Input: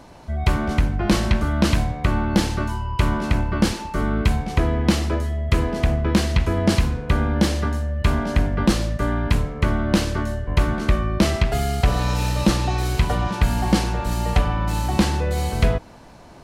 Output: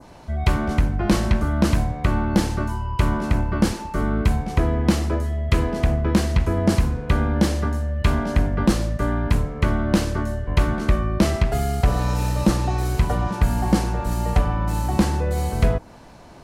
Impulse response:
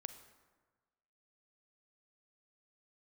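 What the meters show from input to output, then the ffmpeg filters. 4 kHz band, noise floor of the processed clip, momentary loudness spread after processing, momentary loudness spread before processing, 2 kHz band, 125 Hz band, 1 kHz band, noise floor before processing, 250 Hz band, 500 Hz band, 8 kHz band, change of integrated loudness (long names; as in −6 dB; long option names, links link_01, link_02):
−4.5 dB, −44 dBFS, 4 LU, 4 LU, −2.5 dB, 0.0 dB, −1.0 dB, −44 dBFS, 0.0 dB, 0.0 dB, −2.0 dB, −0.5 dB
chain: -af "adynamicequalizer=threshold=0.00708:dfrequency=3300:dqfactor=0.79:tfrequency=3300:tqfactor=0.79:attack=5:release=100:ratio=0.375:range=4:mode=cutabove:tftype=bell"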